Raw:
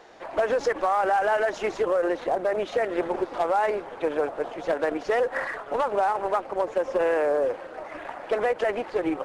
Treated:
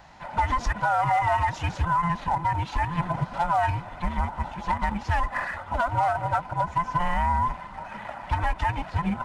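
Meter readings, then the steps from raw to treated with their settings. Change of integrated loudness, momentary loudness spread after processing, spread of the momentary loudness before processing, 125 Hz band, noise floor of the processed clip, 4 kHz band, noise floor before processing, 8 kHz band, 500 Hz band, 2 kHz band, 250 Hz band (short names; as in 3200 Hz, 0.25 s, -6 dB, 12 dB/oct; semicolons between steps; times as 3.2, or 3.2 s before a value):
-0.5 dB, 7 LU, 7 LU, +21.0 dB, -41 dBFS, +1.0 dB, -41 dBFS, n/a, -12.0 dB, +0.5 dB, -1.0 dB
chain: band inversion scrambler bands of 500 Hz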